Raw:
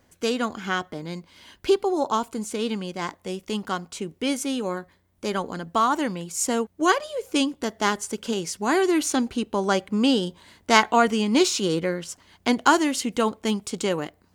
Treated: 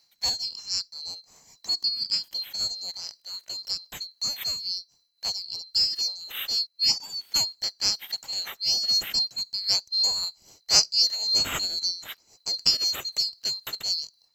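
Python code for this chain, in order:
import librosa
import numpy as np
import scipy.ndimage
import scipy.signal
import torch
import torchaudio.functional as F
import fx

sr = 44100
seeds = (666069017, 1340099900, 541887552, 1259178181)

y = fx.band_swap(x, sr, width_hz=4000)
y = y * (1.0 - 0.57 / 2.0 + 0.57 / 2.0 * np.cos(2.0 * np.pi * 3.8 * (np.arange(len(y)) / sr)))
y = y * 10.0 ** (-1.5 / 20.0)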